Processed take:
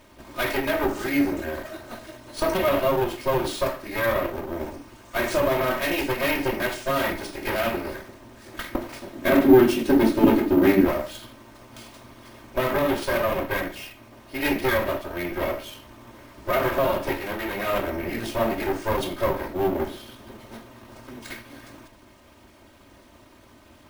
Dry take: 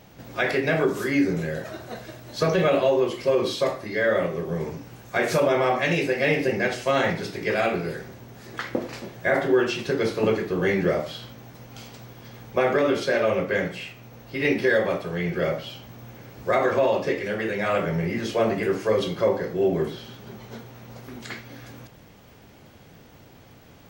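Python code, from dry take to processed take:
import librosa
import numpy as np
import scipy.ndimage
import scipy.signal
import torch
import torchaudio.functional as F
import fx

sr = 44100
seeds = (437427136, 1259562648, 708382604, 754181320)

y = fx.lower_of_two(x, sr, delay_ms=3.2)
y = fx.peak_eq(y, sr, hz=260.0, db=15.0, octaves=1.1, at=(9.13, 10.85))
y = np.repeat(y[::3], 3)[:len(y)]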